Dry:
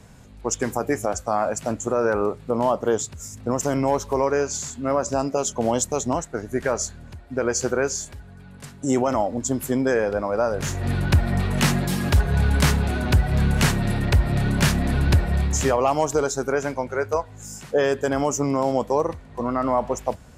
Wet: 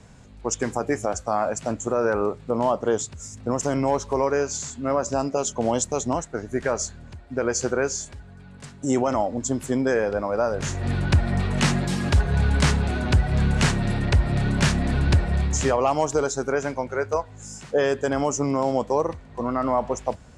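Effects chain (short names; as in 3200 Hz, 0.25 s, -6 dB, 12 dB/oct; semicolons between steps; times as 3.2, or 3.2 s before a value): LPF 8900 Hz 24 dB/oct; gain -1 dB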